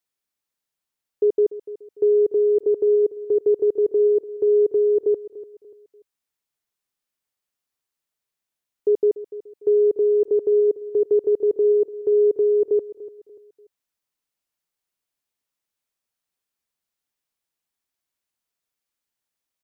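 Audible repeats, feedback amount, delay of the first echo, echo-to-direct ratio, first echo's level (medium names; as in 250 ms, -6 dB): 3, 36%, 292 ms, -15.5 dB, -16.0 dB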